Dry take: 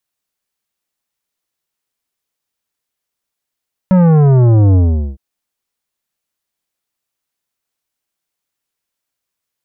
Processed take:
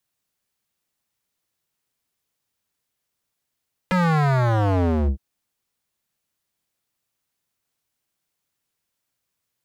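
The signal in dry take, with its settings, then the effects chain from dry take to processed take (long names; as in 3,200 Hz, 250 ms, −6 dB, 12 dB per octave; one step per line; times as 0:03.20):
bass drop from 190 Hz, over 1.26 s, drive 12 dB, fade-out 0.42 s, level −7 dB
parametric band 120 Hz +6.5 dB 1.8 octaves
downward compressor 6 to 1, threshold −7 dBFS
wave folding −15.5 dBFS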